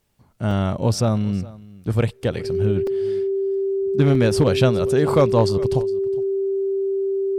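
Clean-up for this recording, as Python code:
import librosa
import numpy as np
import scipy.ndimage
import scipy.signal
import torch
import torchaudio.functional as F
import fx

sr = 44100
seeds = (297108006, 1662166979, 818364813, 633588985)

y = fx.fix_declip(x, sr, threshold_db=-7.0)
y = fx.notch(y, sr, hz=390.0, q=30.0)
y = fx.fix_interpolate(y, sr, at_s=(0.51, 2.87, 4.15), length_ms=3.2)
y = fx.fix_echo_inverse(y, sr, delay_ms=412, level_db=-20.5)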